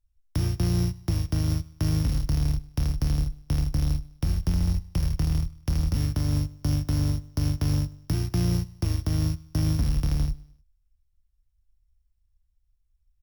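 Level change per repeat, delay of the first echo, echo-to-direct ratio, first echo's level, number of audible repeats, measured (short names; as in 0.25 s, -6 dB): -7.0 dB, 0.102 s, -20.5 dB, -21.5 dB, 2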